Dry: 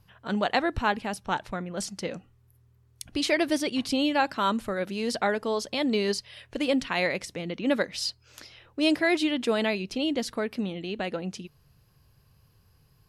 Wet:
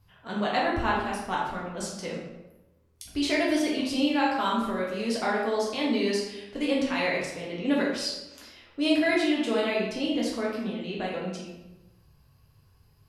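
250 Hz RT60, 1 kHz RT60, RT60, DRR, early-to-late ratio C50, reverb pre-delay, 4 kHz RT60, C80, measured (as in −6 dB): 1.1 s, 0.95 s, 1.0 s, −5.0 dB, 1.5 dB, 5 ms, 0.70 s, 5.0 dB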